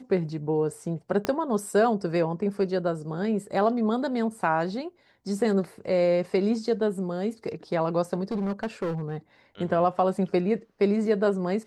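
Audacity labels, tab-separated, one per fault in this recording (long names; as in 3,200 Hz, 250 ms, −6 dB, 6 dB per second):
1.250000	1.250000	click −12 dBFS
8.310000	9.170000	clipping −24.5 dBFS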